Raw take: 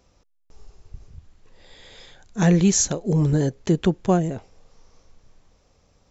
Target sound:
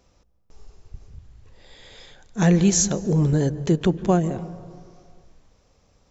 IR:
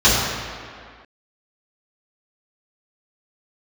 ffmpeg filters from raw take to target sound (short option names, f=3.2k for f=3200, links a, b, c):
-filter_complex "[0:a]asplit=2[a][b];[1:a]atrim=start_sample=2205,highshelf=f=2.4k:g=-11,adelay=140[c];[b][c]afir=irnorm=-1:irlink=0,volume=-38.5dB[d];[a][d]amix=inputs=2:normalize=0"